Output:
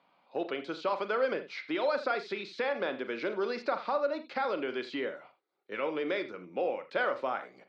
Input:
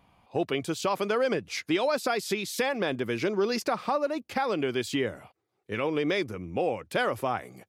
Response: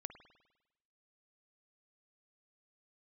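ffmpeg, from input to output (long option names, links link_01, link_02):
-filter_complex "[0:a]acrossover=split=2900[link_01][link_02];[link_02]acompressor=threshold=-41dB:ratio=4:attack=1:release=60[link_03];[link_01][link_03]amix=inputs=2:normalize=0,highpass=frequency=200:width=0.5412,highpass=frequency=200:width=1.3066,equalizer=frequency=210:width_type=q:width=4:gain=-4,equalizer=frequency=560:width_type=q:width=4:gain=6,equalizer=frequency=960:width_type=q:width=4:gain=3,equalizer=frequency=1400:width_type=q:width=4:gain=7,equalizer=frequency=2100:width_type=q:width=4:gain=3,equalizer=frequency=4100:width_type=q:width=4:gain=7,lowpass=frequency=5000:width=0.5412,lowpass=frequency=5000:width=1.3066[link_04];[1:a]atrim=start_sample=2205,atrim=end_sample=6615,asetrate=57330,aresample=44100[link_05];[link_04][link_05]afir=irnorm=-1:irlink=0"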